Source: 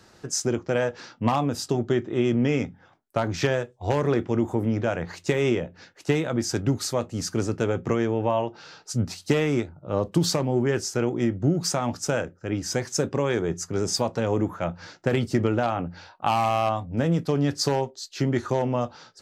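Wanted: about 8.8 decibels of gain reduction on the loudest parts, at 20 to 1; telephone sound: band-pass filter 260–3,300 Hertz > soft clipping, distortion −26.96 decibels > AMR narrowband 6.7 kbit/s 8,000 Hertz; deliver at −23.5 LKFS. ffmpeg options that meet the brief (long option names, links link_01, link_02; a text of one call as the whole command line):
ffmpeg -i in.wav -af "acompressor=threshold=-26dB:ratio=20,highpass=260,lowpass=3300,asoftclip=threshold=-18dB,volume=13dB" -ar 8000 -c:a libopencore_amrnb -b:a 6700 out.amr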